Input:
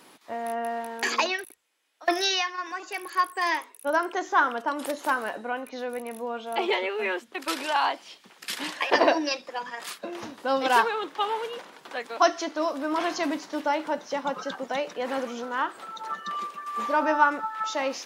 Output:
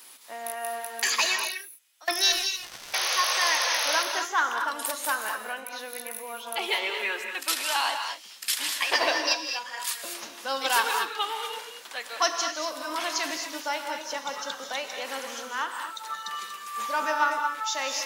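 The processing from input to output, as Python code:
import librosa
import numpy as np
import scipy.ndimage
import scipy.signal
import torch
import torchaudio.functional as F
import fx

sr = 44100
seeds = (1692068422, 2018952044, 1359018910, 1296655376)

p1 = fx.tilt_eq(x, sr, slope=4.5)
p2 = fx.spec_paint(p1, sr, seeds[0], shape='noise', start_s=2.62, length_s=1.41, low_hz=470.0, high_hz=6500.0, level_db=-24.0)
p3 = np.clip(10.0 ** (15.0 / 20.0) * p2, -1.0, 1.0) / 10.0 ** (15.0 / 20.0)
p4 = p2 + F.gain(torch.from_numpy(p3), -8.0).numpy()
p5 = fx.power_curve(p4, sr, exponent=3.0, at=(2.32, 2.94))
p6 = fx.rev_gated(p5, sr, seeds[1], gate_ms=260, shape='rising', drr_db=4.5)
y = F.gain(torch.from_numpy(p6), -7.0).numpy()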